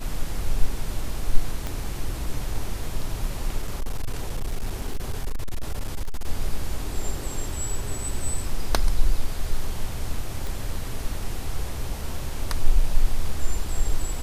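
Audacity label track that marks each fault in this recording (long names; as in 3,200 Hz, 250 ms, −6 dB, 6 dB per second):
1.670000	1.670000	click −15 dBFS
3.620000	6.270000	clipping −21.5 dBFS
10.470000	10.470000	click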